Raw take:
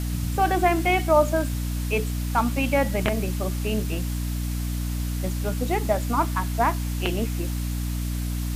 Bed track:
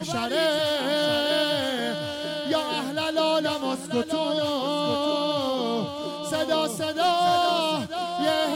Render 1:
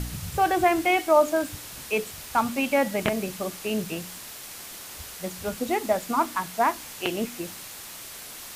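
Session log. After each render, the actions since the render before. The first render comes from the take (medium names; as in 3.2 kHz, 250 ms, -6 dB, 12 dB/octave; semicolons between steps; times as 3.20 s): de-hum 60 Hz, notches 5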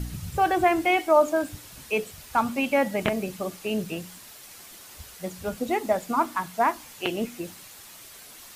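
noise reduction 7 dB, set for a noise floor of -41 dBFS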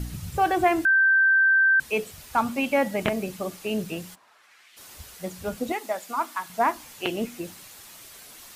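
0.85–1.80 s: bleep 1.56 kHz -15.5 dBFS; 4.14–4.76 s: band-pass filter 780 Hz -> 2.7 kHz, Q 1.6; 5.72–6.50 s: high-pass 980 Hz 6 dB/octave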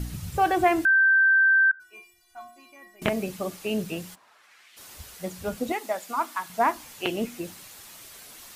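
1.71–3.02 s: inharmonic resonator 350 Hz, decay 0.51 s, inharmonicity 0.008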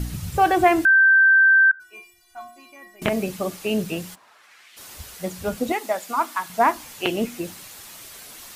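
trim +4.5 dB; peak limiter -3 dBFS, peak gain reduction 2.5 dB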